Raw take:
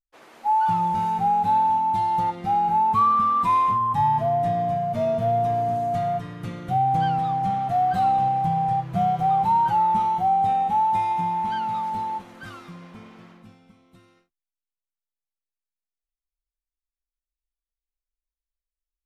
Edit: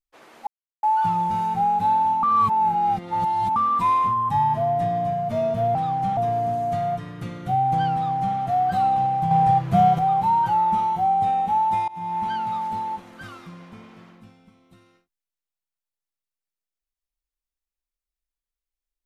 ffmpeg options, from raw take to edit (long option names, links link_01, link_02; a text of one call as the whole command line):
ffmpeg -i in.wav -filter_complex "[0:a]asplit=9[link_01][link_02][link_03][link_04][link_05][link_06][link_07][link_08][link_09];[link_01]atrim=end=0.47,asetpts=PTS-STARTPTS,afade=type=out:start_time=0.466:duration=0.004:curve=hsin,apad=pad_dur=0.36[link_10];[link_02]atrim=start=0.47:end=1.872,asetpts=PTS-STARTPTS,afade=type=in:duration=0.004:curve=hsin[link_11];[link_03]atrim=start=1.868:end=3.202,asetpts=PTS-STARTPTS,areverse[link_12];[link_04]atrim=start=3.198:end=5.392[link_13];[link_05]atrim=start=7.158:end=7.582[link_14];[link_06]atrim=start=5.388:end=8.532[link_15];[link_07]atrim=start=8.528:end=9.212,asetpts=PTS-STARTPTS,volume=5.5dB[link_16];[link_08]atrim=start=9.208:end=11.1,asetpts=PTS-STARTPTS,afade=type=out:start_time=1.888:duration=0.004:curve=hsin:silence=0.0630957[link_17];[link_09]atrim=start=11.1,asetpts=PTS-STARTPTS,afade=type=in:duration=0.31:silence=0.0630957[link_18];[link_10][link_11]concat=n=2:v=0:a=1[link_19];[link_19][link_12]acrossfade=duration=0.004:curve1=hsin:curve2=hsin[link_20];[link_20][link_13]acrossfade=duration=0.004:curve1=hsin:curve2=hsin[link_21];[link_21][link_14]acrossfade=duration=0.004:curve1=hsin:curve2=hsin[link_22];[link_22][link_15]acrossfade=duration=0.004:curve1=hsin:curve2=hsin[link_23];[link_23][link_16]acrossfade=duration=0.004:curve1=hsin:curve2=hsin[link_24];[link_17][link_18]concat=n=2:v=0:a=1[link_25];[link_24][link_25]acrossfade=duration=0.004:curve1=hsin:curve2=hsin" out.wav